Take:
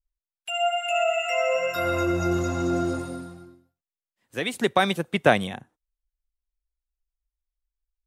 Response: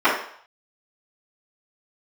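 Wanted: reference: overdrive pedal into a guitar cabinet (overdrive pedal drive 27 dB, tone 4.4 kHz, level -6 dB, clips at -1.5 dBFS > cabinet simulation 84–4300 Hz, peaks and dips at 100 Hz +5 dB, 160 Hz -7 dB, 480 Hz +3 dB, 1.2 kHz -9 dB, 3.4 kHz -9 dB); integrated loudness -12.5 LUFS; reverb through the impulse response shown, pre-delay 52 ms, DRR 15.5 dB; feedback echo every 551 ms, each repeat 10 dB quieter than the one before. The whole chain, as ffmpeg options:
-filter_complex "[0:a]aecho=1:1:551|1102|1653|2204:0.316|0.101|0.0324|0.0104,asplit=2[s0][s1];[1:a]atrim=start_sample=2205,adelay=52[s2];[s1][s2]afir=irnorm=-1:irlink=0,volume=0.0119[s3];[s0][s3]amix=inputs=2:normalize=0,asplit=2[s4][s5];[s5]highpass=f=720:p=1,volume=22.4,asoftclip=type=tanh:threshold=0.841[s6];[s4][s6]amix=inputs=2:normalize=0,lowpass=f=4400:p=1,volume=0.501,highpass=84,equalizer=f=100:t=q:w=4:g=5,equalizer=f=160:t=q:w=4:g=-7,equalizer=f=480:t=q:w=4:g=3,equalizer=f=1200:t=q:w=4:g=-9,equalizer=f=3400:t=q:w=4:g=-9,lowpass=f=4300:w=0.5412,lowpass=f=4300:w=1.3066,volume=1.19"

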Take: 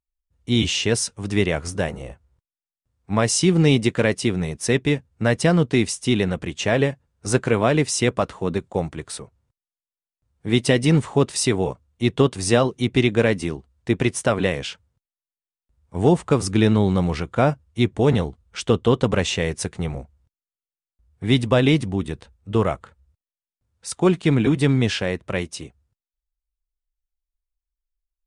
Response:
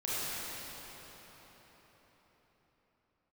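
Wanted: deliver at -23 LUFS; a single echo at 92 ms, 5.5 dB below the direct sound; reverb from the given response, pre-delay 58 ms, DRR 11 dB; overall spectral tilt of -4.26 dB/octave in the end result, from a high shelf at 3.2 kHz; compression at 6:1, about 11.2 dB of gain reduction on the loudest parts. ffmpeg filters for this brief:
-filter_complex "[0:a]highshelf=f=3200:g=5,acompressor=threshold=0.0631:ratio=6,aecho=1:1:92:0.531,asplit=2[s0][s1];[1:a]atrim=start_sample=2205,adelay=58[s2];[s1][s2]afir=irnorm=-1:irlink=0,volume=0.119[s3];[s0][s3]amix=inputs=2:normalize=0,volume=1.78"

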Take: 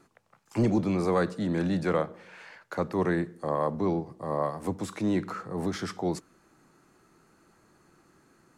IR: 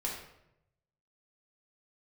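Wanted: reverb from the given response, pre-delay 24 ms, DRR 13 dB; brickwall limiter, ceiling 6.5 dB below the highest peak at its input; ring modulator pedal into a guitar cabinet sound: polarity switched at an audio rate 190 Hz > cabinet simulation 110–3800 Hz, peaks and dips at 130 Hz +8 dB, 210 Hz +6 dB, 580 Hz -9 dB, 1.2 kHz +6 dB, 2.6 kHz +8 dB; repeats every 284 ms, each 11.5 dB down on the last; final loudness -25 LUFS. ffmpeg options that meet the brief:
-filter_complex "[0:a]alimiter=limit=0.075:level=0:latency=1,aecho=1:1:284|568|852:0.266|0.0718|0.0194,asplit=2[s0][s1];[1:a]atrim=start_sample=2205,adelay=24[s2];[s1][s2]afir=irnorm=-1:irlink=0,volume=0.15[s3];[s0][s3]amix=inputs=2:normalize=0,aeval=exprs='val(0)*sgn(sin(2*PI*190*n/s))':c=same,highpass=110,equalizer=f=130:t=q:w=4:g=8,equalizer=f=210:t=q:w=4:g=6,equalizer=f=580:t=q:w=4:g=-9,equalizer=f=1200:t=q:w=4:g=6,equalizer=f=2600:t=q:w=4:g=8,lowpass=f=3800:w=0.5412,lowpass=f=3800:w=1.3066,volume=2.37"

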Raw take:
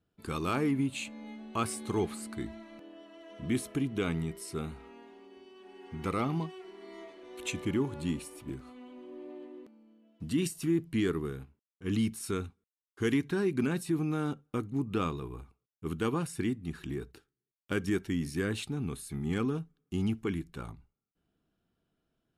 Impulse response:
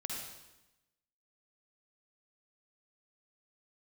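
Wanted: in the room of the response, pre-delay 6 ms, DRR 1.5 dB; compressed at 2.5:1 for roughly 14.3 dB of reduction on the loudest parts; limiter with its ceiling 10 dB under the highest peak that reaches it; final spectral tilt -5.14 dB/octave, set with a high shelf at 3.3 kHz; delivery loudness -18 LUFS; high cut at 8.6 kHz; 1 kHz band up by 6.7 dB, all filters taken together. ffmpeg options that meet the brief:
-filter_complex "[0:a]lowpass=8600,equalizer=f=1000:t=o:g=8,highshelf=f=3300:g=6,acompressor=threshold=0.00501:ratio=2.5,alimiter=level_in=3.76:limit=0.0631:level=0:latency=1,volume=0.266,asplit=2[s0][s1];[1:a]atrim=start_sample=2205,adelay=6[s2];[s1][s2]afir=irnorm=-1:irlink=0,volume=0.75[s3];[s0][s3]amix=inputs=2:normalize=0,volume=21.1"

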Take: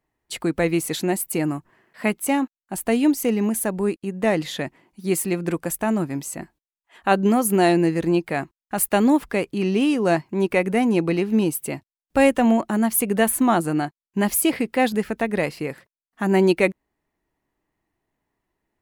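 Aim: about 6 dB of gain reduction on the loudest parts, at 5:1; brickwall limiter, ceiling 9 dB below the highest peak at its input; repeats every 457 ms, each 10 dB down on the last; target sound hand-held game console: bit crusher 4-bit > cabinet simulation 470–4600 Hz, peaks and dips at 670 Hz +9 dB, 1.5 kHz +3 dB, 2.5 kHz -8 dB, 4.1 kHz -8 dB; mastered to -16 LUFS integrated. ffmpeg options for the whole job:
-af "acompressor=threshold=0.112:ratio=5,alimiter=limit=0.133:level=0:latency=1,aecho=1:1:457|914|1371|1828:0.316|0.101|0.0324|0.0104,acrusher=bits=3:mix=0:aa=0.000001,highpass=470,equalizer=f=670:t=q:w=4:g=9,equalizer=f=1500:t=q:w=4:g=3,equalizer=f=2500:t=q:w=4:g=-8,equalizer=f=4100:t=q:w=4:g=-8,lowpass=f=4600:w=0.5412,lowpass=f=4600:w=1.3066,volume=3.98"

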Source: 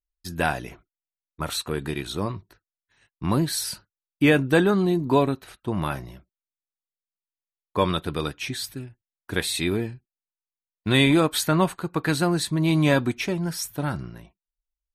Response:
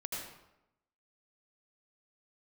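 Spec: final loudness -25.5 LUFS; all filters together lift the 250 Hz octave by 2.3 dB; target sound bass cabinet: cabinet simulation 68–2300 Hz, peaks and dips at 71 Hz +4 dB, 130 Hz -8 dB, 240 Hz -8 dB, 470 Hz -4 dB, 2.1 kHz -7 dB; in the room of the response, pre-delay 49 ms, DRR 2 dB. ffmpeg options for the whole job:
-filter_complex "[0:a]equalizer=f=250:t=o:g=7.5,asplit=2[s0][s1];[1:a]atrim=start_sample=2205,adelay=49[s2];[s1][s2]afir=irnorm=-1:irlink=0,volume=0.668[s3];[s0][s3]amix=inputs=2:normalize=0,highpass=f=68:w=0.5412,highpass=f=68:w=1.3066,equalizer=f=71:t=q:w=4:g=4,equalizer=f=130:t=q:w=4:g=-8,equalizer=f=240:t=q:w=4:g=-8,equalizer=f=470:t=q:w=4:g=-4,equalizer=f=2100:t=q:w=4:g=-7,lowpass=f=2300:w=0.5412,lowpass=f=2300:w=1.3066,volume=0.631"

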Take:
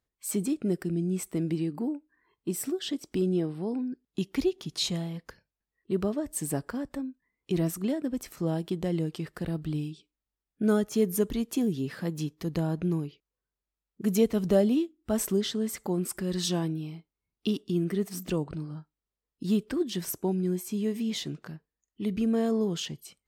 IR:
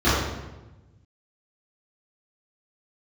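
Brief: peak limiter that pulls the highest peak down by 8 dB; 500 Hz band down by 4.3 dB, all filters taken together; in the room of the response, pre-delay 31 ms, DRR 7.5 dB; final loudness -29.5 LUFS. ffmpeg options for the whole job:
-filter_complex "[0:a]equalizer=f=500:t=o:g=-6,alimiter=limit=0.0794:level=0:latency=1,asplit=2[s0][s1];[1:a]atrim=start_sample=2205,adelay=31[s2];[s1][s2]afir=irnorm=-1:irlink=0,volume=0.0376[s3];[s0][s3]amix=inputs=2:normalize=0,volume=1.26"

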